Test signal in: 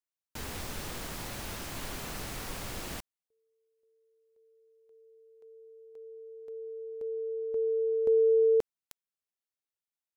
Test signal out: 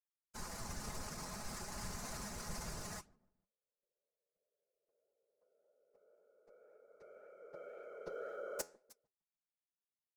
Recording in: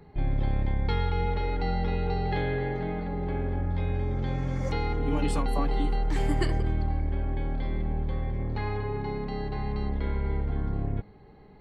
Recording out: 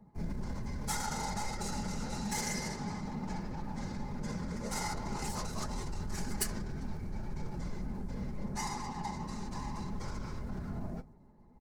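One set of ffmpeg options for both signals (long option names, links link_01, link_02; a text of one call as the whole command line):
ffmpeg -i in.wav -filter_complex "[0:a]asplit=2[link_01][link_02];[link_02]asoftclip=type=tanh:threshold=-22dB,volume=-8dB[link_03];[link_01][link_03]amix=inputs=2:normalize=0,equalizer=frequency=340:width=0.7:gain=-12,asplit=2[link_04][link_05];[link_05]adelay=148,lowpass=frequency=3600:poles=1,volume=-19.5dB,asplit=2[link_06][link_07];[link_07]adelay=148,lowpass=frequency=3600:poles=1,volume=0.39,asplit=2[link_08][link_09];[link_09]adelay=148,lowpass=frequency=3600:poles=1,volume=0.39[link_10];[link_06][link_08][link_10]amix=inputs=3:normalize=0[link_11];[link_04][link_11]amix=inputs=2:normalize=0,adynamicsmooth=sensitivity=5:basefreq=600,afftfilt=real='hypot(re,im)*cos(PI*b)':imag='0':win_size=1024:overlap=0.75,acrossover=split=470|2100[link_12][link_13][link_14];[link_13]acompressor=threshold=-31dB:ratio=3:attack=0.51:release=25:knee=2.83:detection=peak[link_15];[link_12][link_15][link_14]amix=inputs=3:normalize=0,afftfilt=real='hypot(re,im)*cos(2*PI*random(0))':imag='hypot(re,im)*sin(2*PI*random(1))':win_size=512:overlap=0.75,alimiter=level_in=10dB:limit=-24dB:level=0:latency=1:release=25,volume=-10dB,lowshelf=frequency=200:gain=-7,flanger=delay=3.8:depth=8.1:regen=80:speed=1.9:shape=sinusoidal,aexciter=amount=9.5:drive=7.5:freq=4800,aecho=1:1:4.8:0.35,volume=12.5dB" out.wav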